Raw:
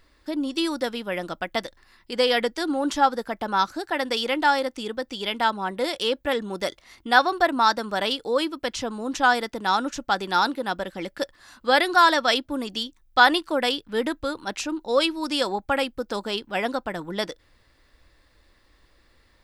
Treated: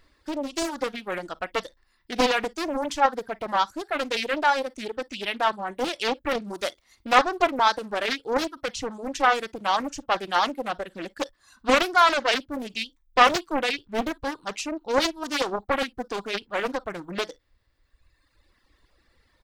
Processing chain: 6.49–7.15 s: treble shelf 7 kHz +5.5 dB; early reflections 40 ms -15.5 dB, 54 ms -17 dB; reverb removal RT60 1.6 s; loudspeaker Doppler distortion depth 0.83 ms; trim -1 dB

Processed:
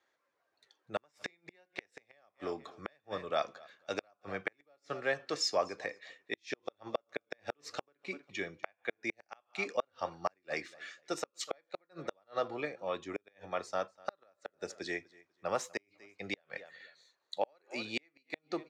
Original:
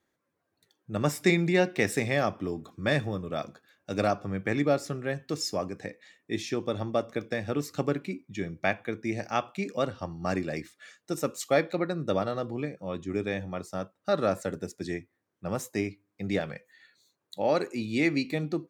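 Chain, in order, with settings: feedback delay 246 ms, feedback 21%, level -23.5 dB; inverted gate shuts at -18 dBFS, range -41 dB; three-band isolator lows -20 dB, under 460 Hz, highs -23 dB, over 6.6 kHz; trim +3 dB

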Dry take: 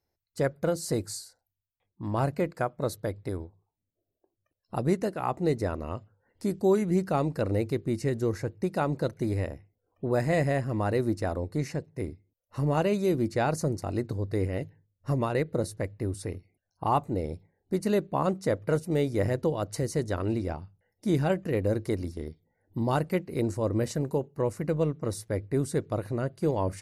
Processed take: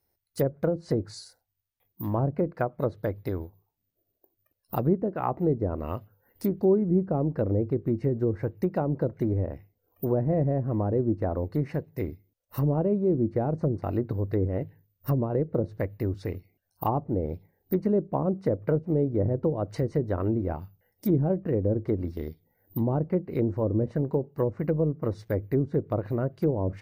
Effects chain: careless resampling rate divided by 3×, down filtered, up zero stuff; low-pass that closes with the level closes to 520 Hz, closed at -17.5 dBFS; trim +2.5 dB

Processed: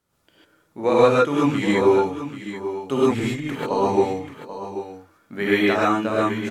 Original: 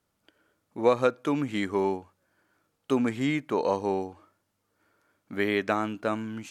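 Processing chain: 2.98–3.71 s: compressor with a negative ratio -32 dBFS, ratio -0.5; delay 786 ms -11.5 dB; gated-style reverb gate 170 ms rising, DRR -7.5 dB

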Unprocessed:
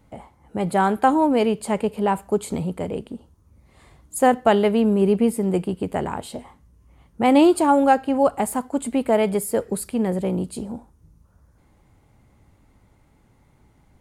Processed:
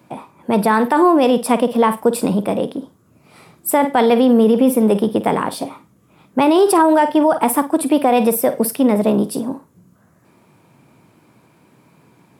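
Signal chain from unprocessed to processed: flutter echo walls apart 9.7 m, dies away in 0.24 s; peak limiter -14 dBFS, peak gain reduction 9.5 dB; high-pass 120 Hz 24 dB/octave; wide varispeed 1.13×; trim +8.5 dB

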